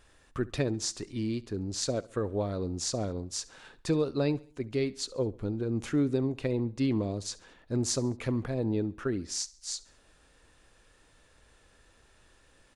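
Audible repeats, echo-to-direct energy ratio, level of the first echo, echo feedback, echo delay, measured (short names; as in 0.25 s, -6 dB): 3, -20.0 dB, -21.0 dB, 45%, 69 ms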